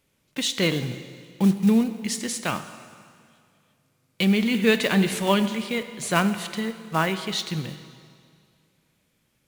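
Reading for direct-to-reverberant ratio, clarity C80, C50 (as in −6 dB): 10.0 dB, 12.5 dB, 11.5 dB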